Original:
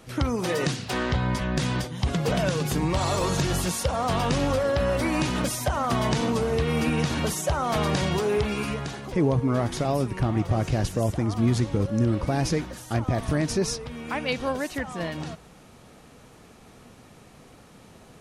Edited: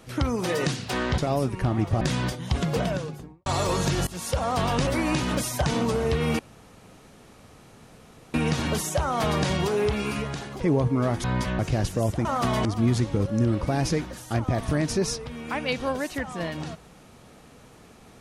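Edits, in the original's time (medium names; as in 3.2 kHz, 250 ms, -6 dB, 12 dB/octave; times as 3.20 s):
1.18–1.53 s: swap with 9.76–10.59 s
2.15–2.98 s: studio fade out
3.59–3.88 s: fade in, from -21.5 dB
4.39–4.94 s: delete
5.73–6.13 s: move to 11.25 s
6.86 s: insert room tone 1.95 s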